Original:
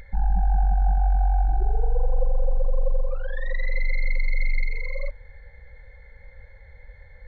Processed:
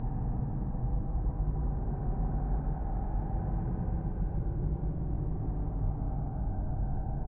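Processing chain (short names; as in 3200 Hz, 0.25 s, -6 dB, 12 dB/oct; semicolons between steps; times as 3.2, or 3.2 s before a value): wind noise 150 Hz -22 dBFS; bell 140 Hz +13 dB 0.63 oct; compressor, threshold -21 dBFS, peak gain reduction 19 dB; on a send: frequency-shifting echo 0.134 s, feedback 44%, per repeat -150 Hz, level -11.5 dB; on the sum: soft clip -26 dBFS, distortion -10 dB; Paulstretch 24×, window 0.10 s, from 1.26; air absorption 420 m; Doppler distortion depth 0.14 ms; gain -2 dB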